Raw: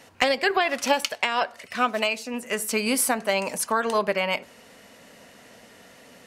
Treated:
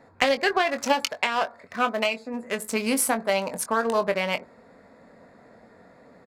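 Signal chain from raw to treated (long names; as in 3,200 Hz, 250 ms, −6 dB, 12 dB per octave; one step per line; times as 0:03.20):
adaptive Wiener filter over 15 samples
double-tracking delay 22 ms −10 dB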